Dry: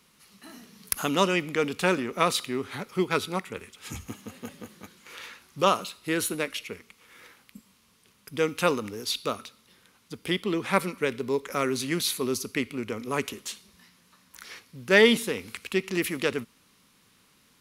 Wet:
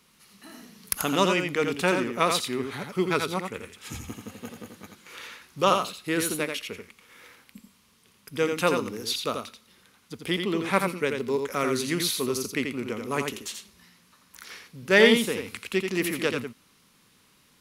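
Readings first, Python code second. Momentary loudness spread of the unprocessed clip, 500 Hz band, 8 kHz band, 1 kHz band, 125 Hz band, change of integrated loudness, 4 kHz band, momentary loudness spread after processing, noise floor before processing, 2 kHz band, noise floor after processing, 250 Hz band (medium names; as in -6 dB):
18 LU, +1.0 dB, +1.0 dB, +1.0 dB, +1.0 dB, +1.0 dB, +1.0 dB, 18 LU, -63 dBFS, +1.0 dB, -62 dBFS, +1.0 dB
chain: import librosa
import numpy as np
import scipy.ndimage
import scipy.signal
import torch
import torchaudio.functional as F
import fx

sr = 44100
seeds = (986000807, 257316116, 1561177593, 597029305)

y = x + 10.0 ** (-5.5 / 20.0) * np.pad(x, (int(85 * sr / 1000.0), 0))[:len(x)]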